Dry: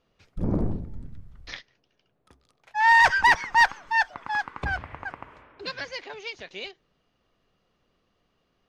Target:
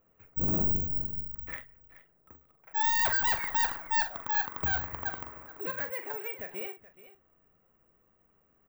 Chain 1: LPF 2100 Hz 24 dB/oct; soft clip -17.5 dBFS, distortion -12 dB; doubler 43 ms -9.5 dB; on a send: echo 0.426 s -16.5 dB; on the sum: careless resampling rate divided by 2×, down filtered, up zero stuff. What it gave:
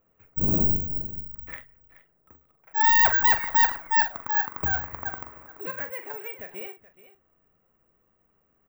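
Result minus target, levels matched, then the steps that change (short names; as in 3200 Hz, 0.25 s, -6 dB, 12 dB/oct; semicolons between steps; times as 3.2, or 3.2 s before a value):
soft clip: distortion -8 dB
change: soft clip -28.5 dBFS, distortion -3 dB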